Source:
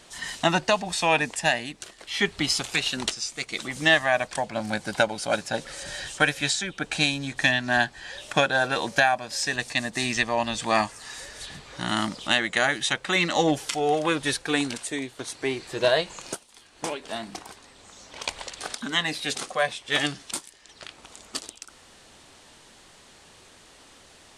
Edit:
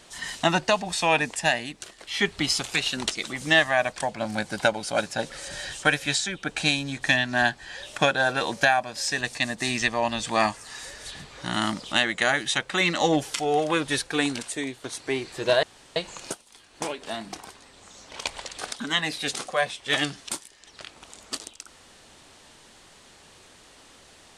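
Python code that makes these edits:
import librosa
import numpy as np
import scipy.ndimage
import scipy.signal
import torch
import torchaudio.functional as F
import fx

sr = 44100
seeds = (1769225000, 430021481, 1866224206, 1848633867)

y = fx.edit(x, sr, fx.cut(start_s=3.15, length_s=0.35),
    fx.insert_room_tone(at_s=15.98, length_s=0.33), tone=tone)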